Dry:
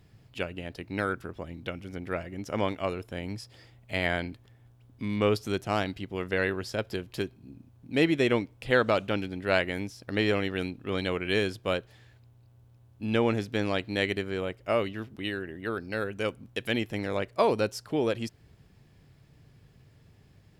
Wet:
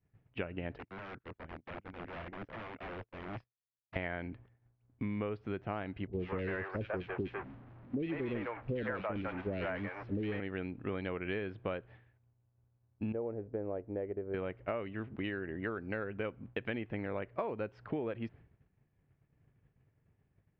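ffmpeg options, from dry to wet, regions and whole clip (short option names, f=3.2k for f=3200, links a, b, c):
-filter_complex "[0:a]asettb=1/sr,asplit=3[a][b][c];[a]atrim=end=0.784[d];[b]atrim=start=0.78:end=3.96,asetpts=PTS-STARTPTS,afade=t=in:d=0.004:c=qsin,afade=t=out:st=3.176:d=0.004:c=qsin,agate=range=-26dB:threshold=-41dB:ratio=16:release=100:detection=peak,acompressor=threshold=-39dB:ratio=3:attack=3.2:release=140:knee=1:detection=peak,aeval=exprs='(mod(89.1*val(0)+1,2)-1)/89.1':c=same[e];[c]atrim=start=3.956[f];[d][e]acrossfade=d=0.004:c1=hsin:c2=qsin[g];[g][f]acrossfade=d=0.004:c1=qsin:c2=hsin,asettb=1/sr,asplit=3[h][i][j];[h]atrim=end=6.074[k];[i]atrim=start=6.07:end=10.4,asetpts=PTS-STARTPTS,afade=t=in:d=0.004:c=qsin,afade=t=out:st=4.326:d=0.004:c=qsin,aeval=exprs='val(0)+0.5*0.0531*sgn(val(0))':c=same,agate=range=-19dB:threshold=-28dB:ratio=16:release=100:detection=peak,acrossover=split=520|2300[l][m][n];[n]adelay=60[o];[m]adelay=150[p];[l][p][o]amix=inputs=3:normalize=0,atrim=end_sample=190953[q];[j]atrim=start=10.396[r];[k][q]acrossfade=d=0.004:c1=hsin:c2=qsin[s];[s][r]acrossfade=d=0.004:c1=qsin:c2=hsin,asettb=1/sr,asplit=3[t][u][v];[t]atrim=end=13.124[w];[u]atrim=start=13.12:end=14.34,asetpts=PTS-STARTPTS,afade=t=in:d=0.004:c=qsin,afade=t=out:st=1.216:d=0.004:c=qsin,lowpass=f=490:t=q:w=1.8,equalizer=f=200:w=0.46:g=-13[x];[v]atrim=start=14.336[y];[w][x]acrossfade=d=0.004:c1=hsin:c2=qsin[z];[z][y]acrossfade=d=0.004:c1=qsin:c2=hsin,agate=range=-33dB:threshold=-45dB:ratio=3:detection=peak,lowpass=f=2.4k:w=0.5412,lowpass=f=2.4k:w=1.3066,acompressor=threshold=-36dB:ratio=12,volume=2.5dB"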